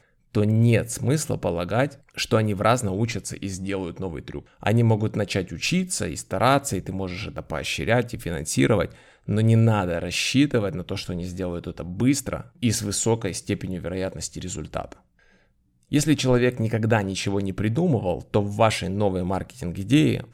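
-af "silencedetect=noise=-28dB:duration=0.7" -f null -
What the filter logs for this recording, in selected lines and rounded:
silence_start: 14.93
silence_end: 15.92 | silence_duration: 0.99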